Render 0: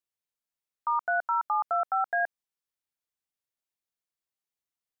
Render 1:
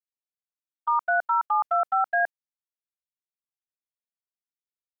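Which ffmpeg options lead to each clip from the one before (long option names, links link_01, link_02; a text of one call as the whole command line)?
ffmpeg -i in.wav -af "agate=range=-22dB:threshold=-31dB:ratio=16:detection=peak,volume=4dB" out.wav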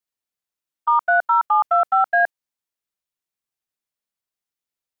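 ffmpeg -i in.wav -af "acontrast=38,volume=1dB" out.wav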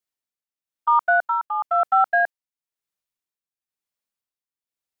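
ffmpeg -i in.wav -af "tremolo=f=1:d=0.63" out.wav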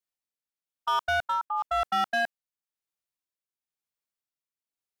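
ffmpeg -i in.wav -af "volume=18dB,asoftclip=hard,volume=-18dB,volume=-4.5dB" out.wav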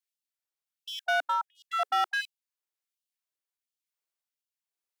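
ffmpeg -i in.wav -af "afftfilt=real='re*gte(b*sr/1024,260*pow(2700/260,0.5+0.5*sin(2*PI*1.4*pts/sr)))':imag='im*gte(b*sr/1024,260*pow(2700/260,0.5+0.5*sin(2*PI*1.4*pts/sr)))':win_size=1024:overlap=0.75" out.wav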